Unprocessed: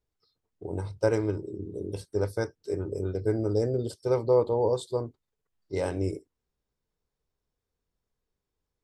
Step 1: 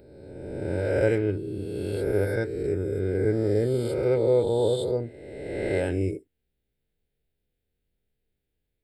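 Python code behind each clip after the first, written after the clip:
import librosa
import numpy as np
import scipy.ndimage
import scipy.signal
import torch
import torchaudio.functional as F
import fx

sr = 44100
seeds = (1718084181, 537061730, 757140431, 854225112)

y = fx.spec_swells(x, sr, rise_s=1.7)
y = fx.fixed_phaser(y, sr, hz=2600.0, stages=4)
y = fx.dynamic_eq(y, sr, hz=1500.0, q=1.2, threshold_db=-46.0, ratio=4.0, max_db=5)
y = F.gain(torch.from_numpy(y), 2.0).numpy()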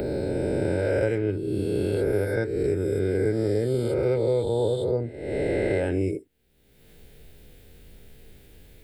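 y = fx.band_squash(x, sr, depth_pct=100)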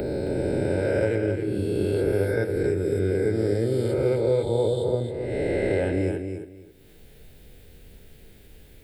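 y = fx.echo_feedback(x, sr, ms=269, feedback_pct=21, wet_db=-7.0)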